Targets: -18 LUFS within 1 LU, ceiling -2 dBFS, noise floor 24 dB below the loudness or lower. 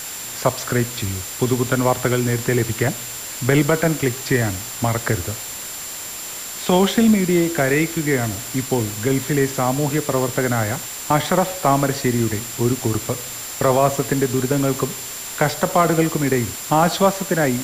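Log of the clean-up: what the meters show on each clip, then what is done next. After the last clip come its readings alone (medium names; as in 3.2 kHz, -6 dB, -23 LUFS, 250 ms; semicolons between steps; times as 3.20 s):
steady tone 7.3 kHz; tone level -33 dBFS; noise floor -31 dBFS; noise floor target -44 dBFS; loudness -20.0 LUFS; peak level -4.5 dBFS; loudness target -18.0 LUFS
-> band-stop 7.3 kHz, Q 30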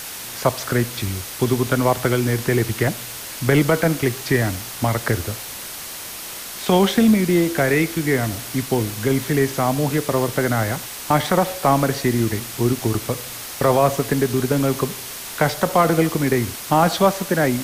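steady tone not found; noise floor -33 dBFS; noise floor target -45 dBFS
-> noise reduction 12 dB, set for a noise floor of -33 dBFS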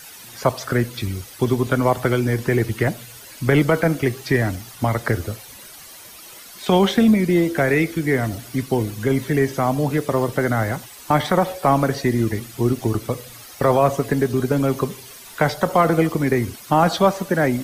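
noise floor -41 dBFS; noise floor target -45 dBFS
-> noise reduction 6 dB, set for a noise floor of -41 dBFS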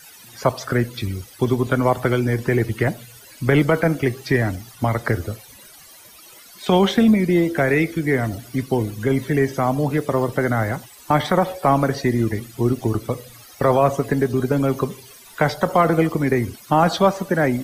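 noise floor -45 dBFS; loudness -20.5 LUFS; peak level -5.0 dBFS; loudness target -18.0 LUFS
-> trim +2.5 dB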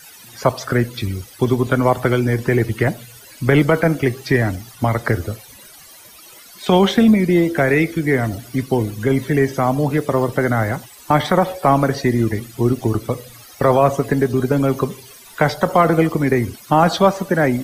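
loudness -18.0 LUFS; peak level -2.5 dBFS; noise floor -43 dBFS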